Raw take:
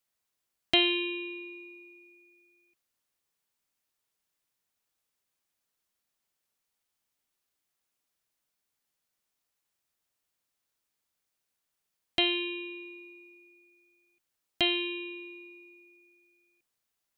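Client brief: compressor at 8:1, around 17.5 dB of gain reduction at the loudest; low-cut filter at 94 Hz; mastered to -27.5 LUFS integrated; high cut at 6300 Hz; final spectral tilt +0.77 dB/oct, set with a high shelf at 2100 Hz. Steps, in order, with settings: HPF 94 Hz; LPF 6300 Hz; high shelf 2100 Hz +6 dB; compressor 8:1, threshold -34 dBFS; gain +12 dB

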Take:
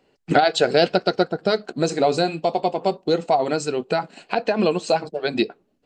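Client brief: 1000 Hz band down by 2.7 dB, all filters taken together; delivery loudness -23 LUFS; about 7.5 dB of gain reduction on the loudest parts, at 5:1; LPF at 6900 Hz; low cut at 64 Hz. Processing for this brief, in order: HPF 64 Hz; LPF 6900 Hz; bell 1000 Hz -4.5 dB; compressor 5:1, threshold -21 dBFS; gain +4.5 dB

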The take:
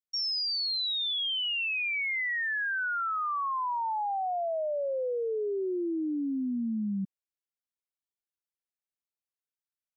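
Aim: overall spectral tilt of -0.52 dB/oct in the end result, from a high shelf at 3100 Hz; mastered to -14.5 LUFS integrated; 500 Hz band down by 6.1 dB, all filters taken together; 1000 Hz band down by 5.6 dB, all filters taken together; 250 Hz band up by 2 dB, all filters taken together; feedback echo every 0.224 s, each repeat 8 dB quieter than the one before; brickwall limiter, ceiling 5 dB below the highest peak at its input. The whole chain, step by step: bell 250 Hz +5 dB; bell 500 Hz -8.5 dB; bell 1000 Hz -6 dB; high shelf 3100 Hz +7.5 dB; limiter -27 dBFS; feedback echo 0.224 s, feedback 40%, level -8 dB; gain +15 dB

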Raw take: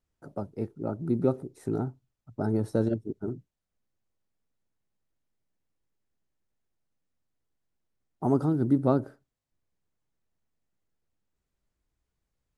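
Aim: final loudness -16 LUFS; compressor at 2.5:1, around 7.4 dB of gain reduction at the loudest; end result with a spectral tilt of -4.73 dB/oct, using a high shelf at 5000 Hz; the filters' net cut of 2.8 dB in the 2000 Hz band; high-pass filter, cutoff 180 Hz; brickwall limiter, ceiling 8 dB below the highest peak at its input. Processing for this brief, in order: HPF 180 Hz; bell 2000 Hz -3.5 dB; high shelf 5000 Hz -8 dB; compressor 2.5:1, threshold -30 dBFS; gain +23 dB; limiter -3.5 dBFS

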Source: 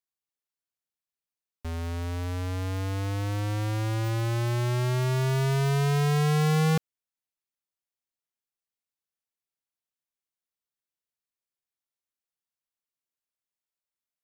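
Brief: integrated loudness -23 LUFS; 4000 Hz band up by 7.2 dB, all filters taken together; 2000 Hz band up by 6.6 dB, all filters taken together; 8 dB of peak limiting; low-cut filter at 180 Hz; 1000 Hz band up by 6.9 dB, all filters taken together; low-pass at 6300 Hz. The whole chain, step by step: HPF 180 Hz; LPF 6300 Hz; bell 1000 Hz +7.5 dB; bell 2000 Hz +4 dB; bell 4000 Hz +8 dB; gain +9 dB; limiter -8.5 dBFS

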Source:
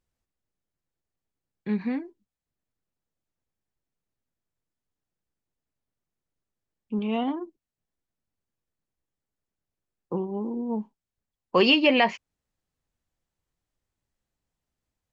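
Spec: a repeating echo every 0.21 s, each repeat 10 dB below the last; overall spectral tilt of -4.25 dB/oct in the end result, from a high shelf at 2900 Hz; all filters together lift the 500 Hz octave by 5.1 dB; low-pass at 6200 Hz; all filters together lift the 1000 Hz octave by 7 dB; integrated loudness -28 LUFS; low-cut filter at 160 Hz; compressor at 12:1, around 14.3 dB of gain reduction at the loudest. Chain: HPF 160 Hz; LPF 6200 Hz; bell 500 Hz +4.5 dB; bell 1000 Hz +8 dB; high shelf 2900 Hz -6.5 dB; compressor 12:1, threshold -25 dBFS; feedback echo 0.21 s, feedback 32%, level -10 dB; gain +4 dB

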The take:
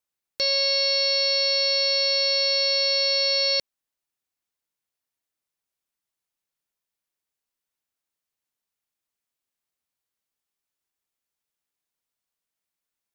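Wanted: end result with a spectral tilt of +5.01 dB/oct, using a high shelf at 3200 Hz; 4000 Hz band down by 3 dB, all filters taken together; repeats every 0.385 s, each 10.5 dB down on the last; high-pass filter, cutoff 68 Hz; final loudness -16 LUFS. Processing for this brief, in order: HPF 68 Hz; high shelf 3200 Hz +5.5 dB; bell 4000 Hz -8 dB; feedback echo 0.385 s, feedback 30%, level -10.5 dB; gain +5 dB

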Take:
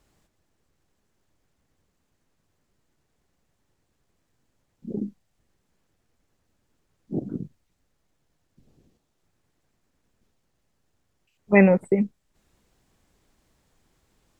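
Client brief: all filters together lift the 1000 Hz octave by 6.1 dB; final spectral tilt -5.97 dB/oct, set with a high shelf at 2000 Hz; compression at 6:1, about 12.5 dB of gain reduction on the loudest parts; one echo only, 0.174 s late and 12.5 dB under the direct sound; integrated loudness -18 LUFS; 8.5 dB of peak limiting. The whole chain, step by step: bell 1000 Hz +7 dB; high shelf 2000 Hz +5 dB; compressor 6:1, threshold -22 dBFS; limiter -20 dBFS; echo 0.174 s -12.5 dB; gain +16 dB

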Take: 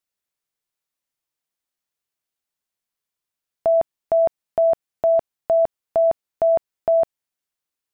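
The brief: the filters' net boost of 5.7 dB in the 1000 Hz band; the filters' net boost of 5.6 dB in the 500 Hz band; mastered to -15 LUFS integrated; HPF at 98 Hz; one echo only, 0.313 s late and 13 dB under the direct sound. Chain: HPF 98 Hz; bell 500 Hz +4.5 dB; bell 1000 Hz +7 dB; echo 0.313 s -13 dB

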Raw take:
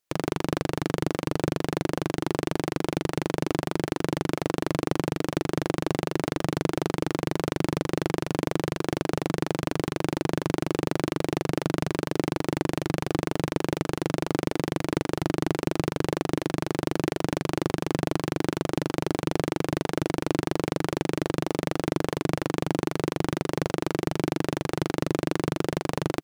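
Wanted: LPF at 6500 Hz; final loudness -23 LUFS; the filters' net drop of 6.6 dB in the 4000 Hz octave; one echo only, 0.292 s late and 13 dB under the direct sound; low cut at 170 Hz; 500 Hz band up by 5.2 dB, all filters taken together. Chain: HPF 170 Hz; LPF 6500 Hz; bell 500 Hz +7 dB; bell 4000 Hz -8.5 dB; echo 0.292 s -13 dB; gain +2.5 dB

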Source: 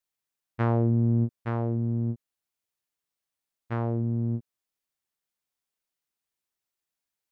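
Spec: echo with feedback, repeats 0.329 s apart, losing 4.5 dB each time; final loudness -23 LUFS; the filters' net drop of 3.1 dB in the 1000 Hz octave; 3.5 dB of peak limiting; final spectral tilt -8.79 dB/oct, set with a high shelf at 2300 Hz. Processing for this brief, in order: bell 1000 Hz -3.5 dB; high shelf 2300 Hz -4 dB; limiter -19 dBFS; feedback echo 0.329 s, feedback 60%, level -4.5 dB; gain +8 dB

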